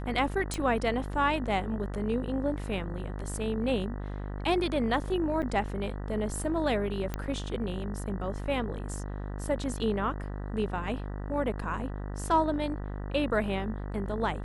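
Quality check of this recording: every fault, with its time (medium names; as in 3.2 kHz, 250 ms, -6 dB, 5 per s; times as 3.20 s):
buzz 50 Hz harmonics 39 -36 dBFS
0.54 s: pop
5.42–5.43 s: dropout 8.2 ms
7.14 s: pop -18 dBFS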